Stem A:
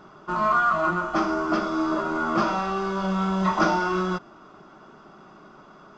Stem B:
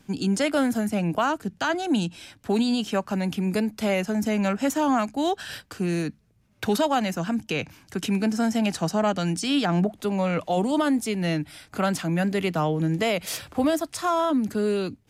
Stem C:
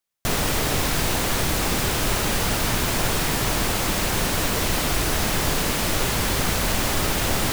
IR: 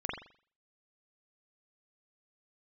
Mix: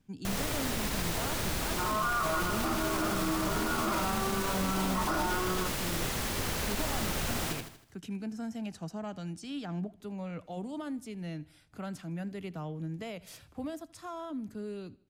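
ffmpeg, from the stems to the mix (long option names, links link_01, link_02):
-filter_complex "[0:a]bandreject=frequency=60:width_type=h:width=6,bandreject=frequency=120:width_type=h:width=6,bandreject=frequency=180:width_type=h:width=6,adelay=1500,volume=-5.5dB[link_01];[1:a]lowshelf=frequency=190:gain=11,volume=-18.5dB,asplit=2[link_02][link_03];[link_03]volume=-21.5dB[link_04];[2:a]volume=-12dB,asplit=2[link_05][link_06];[link_06]volume=-4dB[link_07];[link_04][link_07]amix=inputs=2:normalize=0,aecho=0:1:79|158|237|316|395|474:1|0.43|0.185|0.0795|0.0342|0.0147[link_08];[link_01][link_02][link_05][link_08]amix=inputs=4:normalize=0,alimiter=limit=-21.5dB:level=0:latency=1:release=25"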